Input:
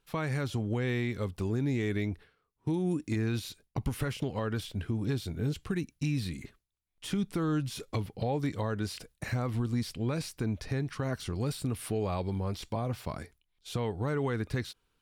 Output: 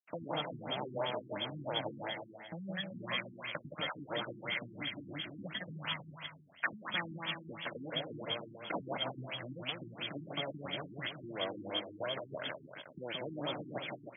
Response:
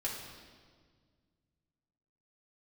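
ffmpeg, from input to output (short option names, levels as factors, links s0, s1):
-filter_complex "[0:a]afftfilt=real='real(if(lt(b,272),68*(eq(floor(b/68),0)*1+eq(floor(b/68),1)*2+eq(floor(b/68),2)*3+eq(floor(b/68),3)*0)+mod(b,68),b),0)':imag='imag(if(lt(b,272),68*(eq(floor(b/68),0)*1+eq(floor(b/68),1)*2+eq(floor(b/68),2)*3+eq(floor(b/68),3)*0)+mod(b,68),b),0)':win_size=2048:overlap=0.75,agate=range=0.0224:threshold=0.00126:ratio=16:detection=peak,afwtdn=0.00794,highshelf=f=2100:g=6,acompressor=threshold=0.0178:ratio=2.5,aeval=exprs='(tanh(22.4*val(0)+0.65)-tanh(0.65))/22.4':c=same,asetrate=46746,aresample=44100,aecho=1:1:170|314.5|437.3|541.7|630.5:0.631|0.398|0.251|0.158|0.1,asplit=2[s0][s1];[s1]asetrate=29433,aresample=44100,atempo=1.49831,volume=0.126[s2];[s0][s2]amix=inputs=2:normalize=0,highpass=f=170:w=0.5412,highpass=f=170:w=1.3066,equalizer=f=230:t=q:w=4:g=-9,equalizer=f=390:t=q:w=4:g=-9,equalizer=f=600:t=q:w=4:g=9,equalizer=f=1500:t=q:w=4:g=8,equalizer=f=2300:t=q:w=4:g=6,equalizer=f=3600:t=q:w=4:g=7,lowpass=f=4500:w=0.5412,lowpass=f=4500:w=1.3066,afftfilt=real='re*lt(b*sr/1024,370*pow(3500/370,0.5+0.5*sin(2*PI*2.9*pts/sr)))':imag='im*lt(b*sr/1024,370*pow(3500/370,0.5+0.5*sin(2*PI*2.9*pts/sr)))':win_size=1024:overlap=0.75,volume=4.73"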